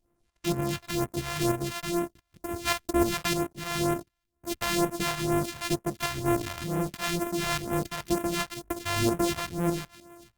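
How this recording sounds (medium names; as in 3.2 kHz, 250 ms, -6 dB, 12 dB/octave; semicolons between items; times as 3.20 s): a buzz of ramps at a fixed pitch in blocks of 128 samples; tremolo saw up 3.3 Hz, depth 55%; phasing stages 2, 2.1 Hz, lowest notch 260–4300 Hz; Opus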